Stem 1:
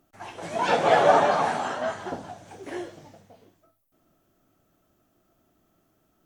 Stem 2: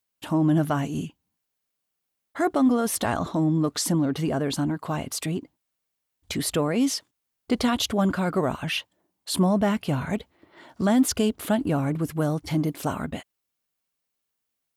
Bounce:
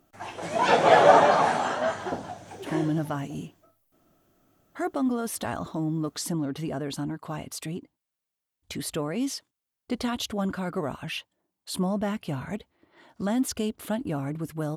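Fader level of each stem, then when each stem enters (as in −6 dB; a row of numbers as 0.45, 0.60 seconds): +2.0, −6.0 decibels; 0.00, 2.40 seconds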